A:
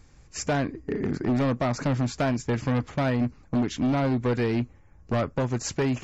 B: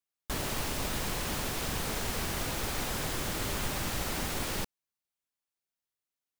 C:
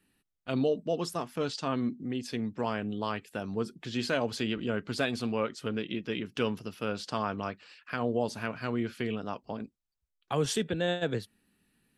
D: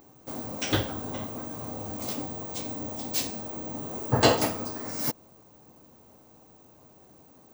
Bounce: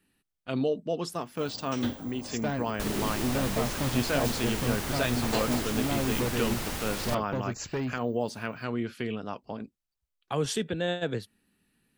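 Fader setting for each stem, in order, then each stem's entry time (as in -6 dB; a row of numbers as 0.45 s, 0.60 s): -6.5 dB, -0.5 dB, 0.0 dB, -10.5 dB; 1.95 s, 2.50 s, 0.00 s, 1.10 s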